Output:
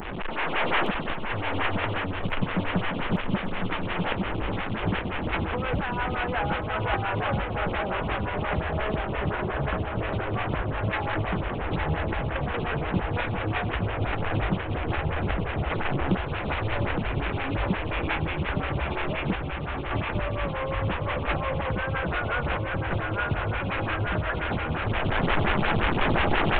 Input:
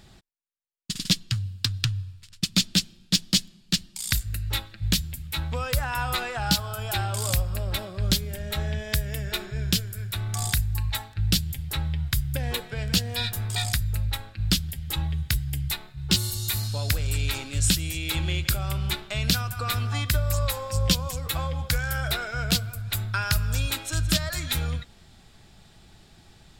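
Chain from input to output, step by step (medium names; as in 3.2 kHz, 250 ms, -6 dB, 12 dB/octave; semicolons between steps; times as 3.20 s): one-bit delta coder 16 kbps, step -24.5 dBFS; recorder AGC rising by 16 dB/s; 9.30–9.99 s: steep low-pass 1.7 kHz 96 dB/octave; 19.35–19.91 s: expander -14 dBFS; on a send: shuffle delay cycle 1152 ms, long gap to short 3:1, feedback 66%, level -5.5 dB; on the sum: lamp-driven phase shifter 5.7 Hz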